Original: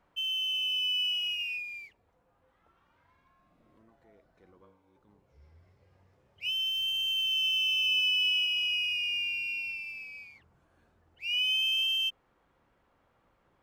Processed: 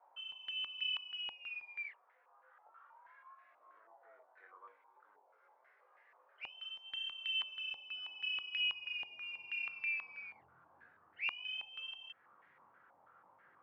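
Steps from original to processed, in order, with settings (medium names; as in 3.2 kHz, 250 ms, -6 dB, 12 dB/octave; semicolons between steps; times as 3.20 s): high-pass 470 Hz 24 dB/octave, from 7.41 s 210 Hz, from 8.57 s 99 Hz; tilt shelf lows -6 dB, about 780 Hz; compression 2.5:1, threshold -33 dBFS, peak gain reduction 9.5 dB; chorus 0.81 Hz, delay 19.5 ms, depth 4.2 ms; step-sequenced low-pass 6.2 Hz 840–1900 Hz; trim +1 dB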